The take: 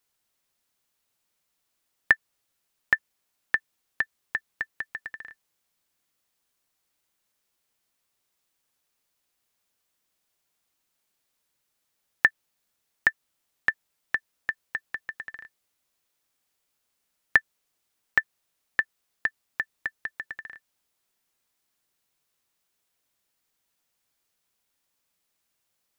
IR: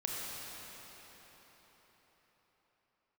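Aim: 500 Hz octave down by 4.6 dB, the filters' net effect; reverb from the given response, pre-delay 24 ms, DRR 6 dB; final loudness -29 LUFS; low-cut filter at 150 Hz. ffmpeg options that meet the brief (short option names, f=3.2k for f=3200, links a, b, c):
-filter_complex "[0:a]highpass=150,equalizer=f=500:t=o:g=-6,asplit=2[a][b];[1:a]atrim=start_sample=2205,adelay=24[c];[b][c]afir=irnorm=-1:irlink=0,volume=-10dB[d];[a][d]amix=inputs=2:normalize=0,volume=0.5dB"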